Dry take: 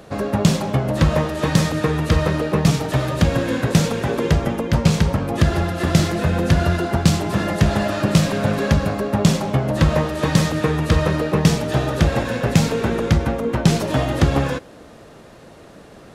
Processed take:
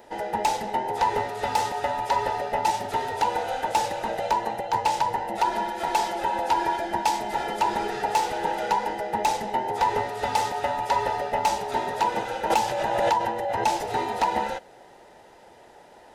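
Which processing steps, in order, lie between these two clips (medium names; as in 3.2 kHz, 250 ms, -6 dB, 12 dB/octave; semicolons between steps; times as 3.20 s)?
every band turned upside down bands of 1 kHz; wavefolder -6 dBFS; 12.50–13.66 s: swell ahead of each attack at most 30 dB/s; trim -7.5 dB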